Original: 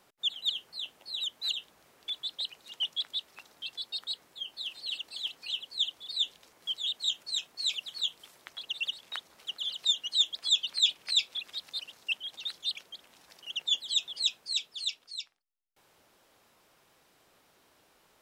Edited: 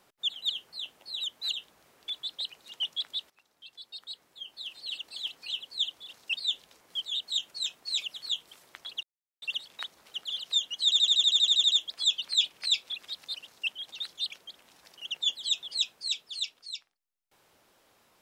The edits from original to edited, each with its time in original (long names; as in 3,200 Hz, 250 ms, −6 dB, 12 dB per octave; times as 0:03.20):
0:03.30–0:05.16: fade in linear, from −17 dB
0:08.75: splice in silence 0.39 s
0:10.17: stutter 0.08 s, 12 plays
0:11.88–0:12.16: duplicate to 0:06.09